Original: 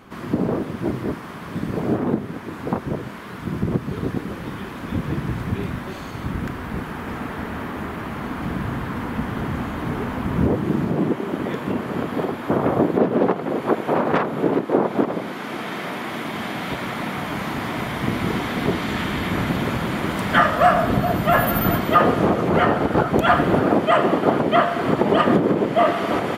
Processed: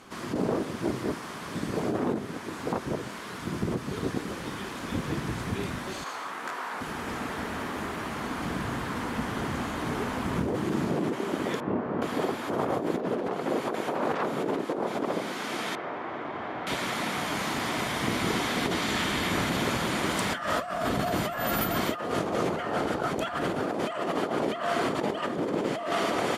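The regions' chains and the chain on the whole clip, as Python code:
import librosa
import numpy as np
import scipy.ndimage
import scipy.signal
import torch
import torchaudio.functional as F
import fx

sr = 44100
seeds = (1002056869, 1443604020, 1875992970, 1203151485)

y = fx.chain(x, sr, fx.highpass(hz=440.0, slope=12),
    fx.peak_eq(hz=1100.0, db=8.0, octaves=1.9),
    fx.detune_double(cents=59), at=(6.04, 6.81))
y = fx.chain(y, sr, fx.lowpass(hz=1200.0, slope=12),
    fx.doubler(ms=29.0, db=-6), at=(11.6, 12.02))
y = fx.chain(y, sr, fx.lowpass(hz=1300.0, slope=12),
    fx.peak_eq(hz=200.0, db=-10.0, octaves=0.7), at=(15.75, 16.67))
y = scipy.signal.sosfilt(scipy.signal.butter(2, 8700.0, 'lowpass', fs=sr, output='sos'), y)
y = fx.bass_treble(y, sr, bass_db=-6, treble_db=12)
y = fx.over_compress(y, sr, threshold_db=-23.0, ratio=-1.0)
y = y * 10.0 ** (-5.0 / 20.0)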